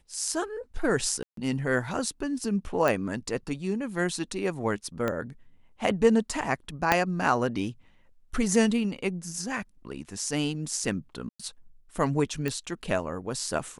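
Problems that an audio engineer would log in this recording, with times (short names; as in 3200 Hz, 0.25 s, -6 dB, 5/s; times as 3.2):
1.23–1.37 gap 0.143 s
2.88 pop
5.08 pop -15 dBFS
6.92 pop -6 dBFS
11.29–11.39 gap 0.105 s
12.48 pop -16 dBFS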